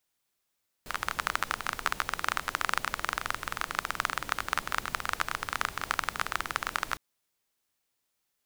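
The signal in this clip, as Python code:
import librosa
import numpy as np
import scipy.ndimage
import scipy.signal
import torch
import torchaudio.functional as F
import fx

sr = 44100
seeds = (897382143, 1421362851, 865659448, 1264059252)

y = fx.rain(sr, seeds[0], length_s=6.11, drops_per_s=21.0, hz=1300.0, bed_db=-11.0)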